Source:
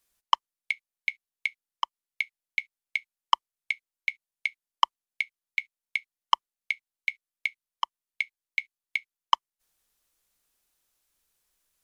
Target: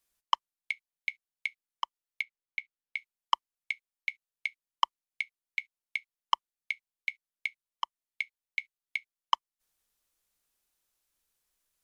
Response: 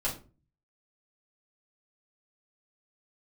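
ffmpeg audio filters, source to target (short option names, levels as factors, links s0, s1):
-filter_complex "[0:a]asettb=1/sr,asplit=3[s0][s1][s2];[s0]atrim=end=2.224[s3];[s1]atrim=start=2.22:end=2.97,asetpts=PTS-STARTPTS,afade=t=in:d=0.004:c=qsin,afade=t=out:st=0.746:d=0.004:c=qsin,lowpass=f=2600:p=1[s4];[s2]atrim=start=2.966[s5];[s3][s4]acrossfade=d=0.004:c1=hsin:c2=qsin[s6];[s6][s5]acrossfade=d=0.004:c1=qsin:c2=hsin,volume=0.596"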